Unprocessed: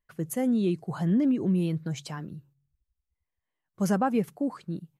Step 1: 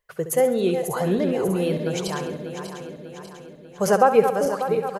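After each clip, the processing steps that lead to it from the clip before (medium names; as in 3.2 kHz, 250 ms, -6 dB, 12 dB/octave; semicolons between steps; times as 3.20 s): backward echo that repeats 297 ms, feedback 71%, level -8 dB; resonant low shelf 360 Hz -7.5 dB, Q 3; feedback delay 68 ms, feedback 49%, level -11 dB; trim +8.5 dB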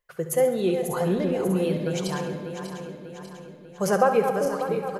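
simulated room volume 2600 m³, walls mixed, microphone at 0.89 m; trim -3.5 dB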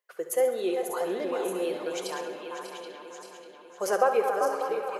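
high-pass 330 Hz 24 dB/octave; on a send: repeats whose band climbs or falls 389 ms, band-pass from 1.1 kHz, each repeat 1.4 oct, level -3 dB; on the sum: trim -3 dB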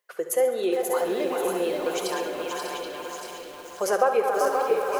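in parallel at +1 dB: compression, threshold -34 dBFS, peak gain reduction 16 dB; on the sum: bit-crushed delay 533 ms, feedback 35%, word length 7-bit, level -5 dB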